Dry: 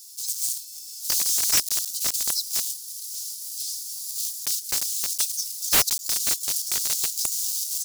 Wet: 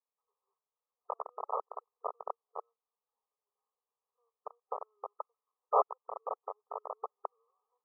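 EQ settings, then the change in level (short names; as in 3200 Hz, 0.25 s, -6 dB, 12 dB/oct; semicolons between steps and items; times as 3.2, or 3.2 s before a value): brick-wall FIR band-pass 410–1300 Hz; +6.5 dB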